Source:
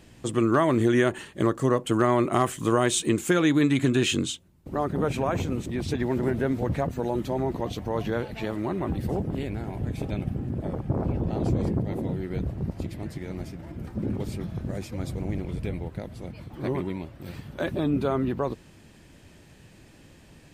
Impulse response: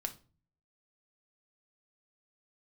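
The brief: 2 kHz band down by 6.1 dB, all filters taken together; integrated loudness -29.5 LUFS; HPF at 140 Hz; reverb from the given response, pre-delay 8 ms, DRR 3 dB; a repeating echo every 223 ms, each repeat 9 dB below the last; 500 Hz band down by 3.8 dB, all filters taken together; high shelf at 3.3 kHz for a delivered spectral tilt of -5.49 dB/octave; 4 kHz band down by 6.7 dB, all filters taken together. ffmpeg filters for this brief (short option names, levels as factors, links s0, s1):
-filter_complex "[0:a]highpass=140,equalizer=f=500:t=o:g=-5,equalizer=f=2000:t=o:g=-7,highshelf=f=3300:g=4.5,equalizer=f=4000:t=o:g=-9,aecho=1:1:223|446|669|892:0.355|0.124|0.0435|0.0152,asplit=2[s0][s1];[1:a]atrim=start_sample=2205,adelay=8[s2];[s1][s2]afir=irnorm=-1:irlink=0,volume=0.75[s3];[s0][s3]amix=inputs=2:normalize=0,volume=0.75"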